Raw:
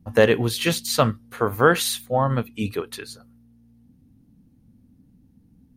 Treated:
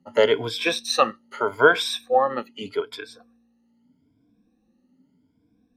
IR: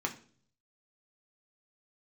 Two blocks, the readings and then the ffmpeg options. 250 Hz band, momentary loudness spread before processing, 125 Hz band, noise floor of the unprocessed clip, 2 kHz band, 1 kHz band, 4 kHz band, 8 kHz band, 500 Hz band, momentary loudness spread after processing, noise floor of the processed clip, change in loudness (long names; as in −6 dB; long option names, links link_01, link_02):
−7.5 dB, 13 LU, −16.0 dB, −58 dBFS, +2.0 dB, +1.5 dB, +1.0 dB, −6.5 dB, 0.0 dB, 14 LU, −67 dBFS, −0.5 dB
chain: -filter_complex "[0:a]afftfilt=real='re*pow(10,19/40*sin(2*PI*(1.7*log(max(b,1)*sr/1024/100)/log(2)-(0.81)*(pts-256)/sr)))':imag='im*pow(10,19/40*sin(2*PI*(1.7*log(max(b,1)*sr/1024/100)/log(2)-(0.81)*(pts-256)/sr)))':win_size=1024:overlap=0.75,acrossover=split=270 6600:gain=0.1 1 0.0794[link_01][link_02][link_03];[link_01][link_02][link_03]amix=inputs=3:normalize=0,volume=-2.5dB"